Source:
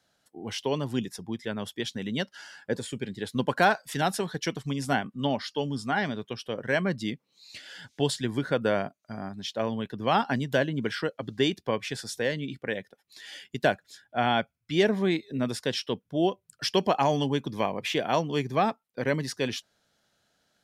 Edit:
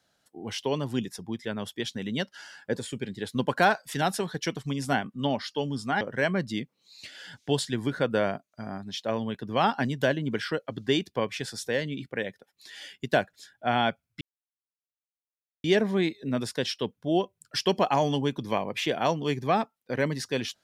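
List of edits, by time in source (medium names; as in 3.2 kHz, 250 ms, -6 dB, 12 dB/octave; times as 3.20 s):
6.01–6.52 s: delete
14.72 s: insert silence 1.43 s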